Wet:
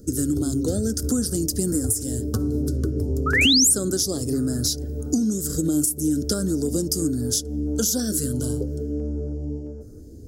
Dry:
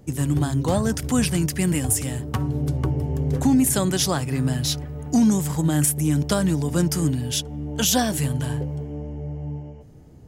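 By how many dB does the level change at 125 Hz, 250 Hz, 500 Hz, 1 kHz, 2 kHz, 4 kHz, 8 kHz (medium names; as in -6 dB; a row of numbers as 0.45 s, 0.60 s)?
-5.0 dB, -1.0 dB, +0.5 dB, -9.0 dB, +5.0 dB, +4.5 dB, +3.0 dB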